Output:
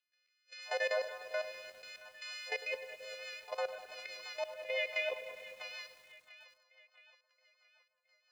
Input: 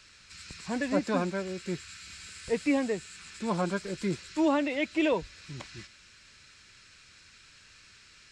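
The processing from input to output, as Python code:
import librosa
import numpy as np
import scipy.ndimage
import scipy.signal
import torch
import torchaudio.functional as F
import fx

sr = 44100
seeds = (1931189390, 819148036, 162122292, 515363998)

y = fx.freq_snap(x, sr, grid_st=3)
y = fx.transient(y, sr, attack_db=1, sustain_db=-6)
y = scipy.signal.sosfilt(scipy.signal.cheby1(6, 6, 490.0, 'highpass', fs=sr, output='sos'), y)
y = fx.peak_eq(y, sr, hz=1200.0, db=-5.5, octaves=1.9)
y = fx.rev_fdn(y, sr, rt60_s=1.3, lf_ratio=1.0, hf_ratio=0.45, size_ms=28.0, drr_db=9.0)
y = fx.step_gate(y, sr, bpm=115, pattern='.x..xxxx..xxx', floor_db=-12.0, edge_ms=4.5)
y = fx.air_absorb(y, sr, metres=230.0)
y = fx.level_steps(y, sr, step_db=14)
y = fx.noise_reduce_blind(y, sr, reduce_db=14)
y = fx.echo_split(y, sr, split_hz=780.0, low_ms=199, high_ms=671, feedback_pct=52, wet_db=-15.5)
y = fx.rotary_switch(y, sr, hz=0.75, then_hz=6.0, switch_at_s=2.36)
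y = fx.echo_crushed(y, sr, ms=101, feedback_pct=80, bits=11, wet_db=-14.0)
y = F.gain(torch.from_numpy(y), 10.5).numpy()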